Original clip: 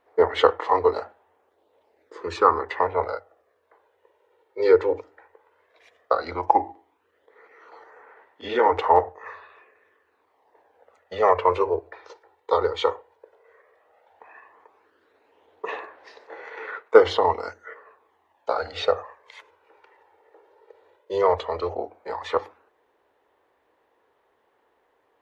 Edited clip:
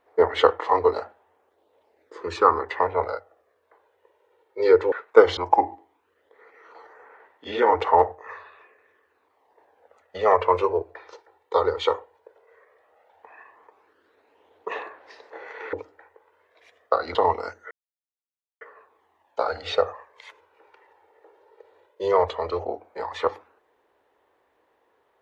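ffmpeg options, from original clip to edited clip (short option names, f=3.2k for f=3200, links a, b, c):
-filter_complex "[0:a]asplit=6[a][b][c][d][e][f];[a]atrim=end=4.922[g];[b]atrim=start=16.698:end=17.152[h];[c]atrim=start=6.338:end=16.702[i];[d]atrim=start=4.918:end=6.342[j];[e]atrim=start=17.148:end=17.71,asetpts=PTS-STARTPTS,afade=t=out:st=0.558:d=0.004:c=hsin,apad=pad_dur=0.9[k];[f]atrim=start=17.71,asetpts=PTS-STARTPTS,afade=t=in:d=0.004:c=hsin[l];[g][h]acrossfade=d=0.004:c1=hsin:c2=hsin[m];[m][i]acrossfade=d=0.004:c1=hsin:c2=hsin[n];[n][j]acrossfade=d=0.004:c1=hsin:c2=hsin[o];[k][l]concat=n=2:v=0:a=1[p];[o][p]acrossfade=d=0.004:c1=hsin:c2=hsin"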